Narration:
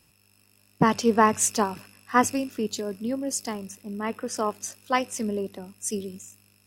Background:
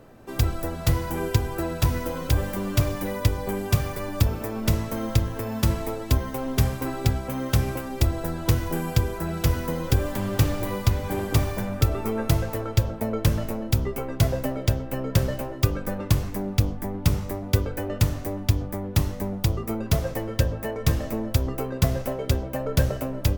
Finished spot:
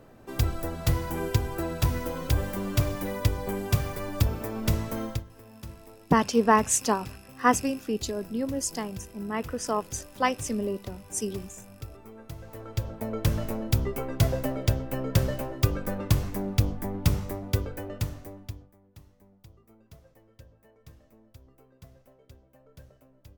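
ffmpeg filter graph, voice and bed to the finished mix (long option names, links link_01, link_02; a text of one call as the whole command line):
ffmpeg -i stem1.wav -i stem2.wav -filter_complex "[0:a]adelay=5300,volume=-1dB[link_01];[1:a]volume=15dB,afade=type=out:start_time=5.01:duration=0.23:silence=0.141254,afade=type=in:start_time=12.36:duration=1.16:silence=0.125893,afade=type=out:start_time=17.05:duration=1.68:silence=0.0421697[link_02];[link_01][link_02]amix=inputs=2:normalize=0" out.wav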